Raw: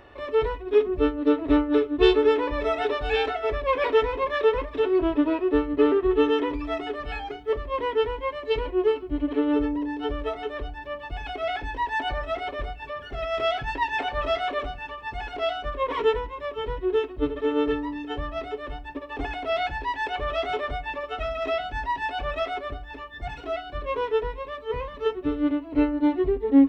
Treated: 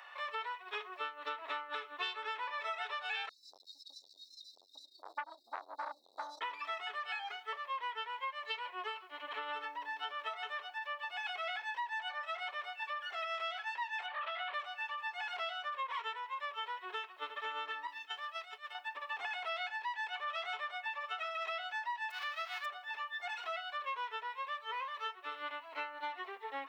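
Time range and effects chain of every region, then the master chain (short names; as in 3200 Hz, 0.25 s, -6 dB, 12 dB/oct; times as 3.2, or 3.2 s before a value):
3.29–6.41 brick-wall FIR band-stop 330–3700 Hz + frequency-shifting echo 0.285 s, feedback 30%, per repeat -60 Hz, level -15.5 dB + core saturation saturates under 810 Hz
14.06–14.54 LPF 3700 Hz 24 dB/oct + compressor, threshold -26 dBFS + Doppler distortion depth 0.26 ms
17.87–18.75 expander -27 dBFS + high shelf 2600 Hz +10 dB + compressor 5:1, threshold -34 dBFS
22.1–22.64 spectral whitening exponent 0.1 + air absorption 330 m
whole clip: HPF 920 Hz 24 dB/oct; compressor 6:1, threshold -39 dBFS; gain +2 dB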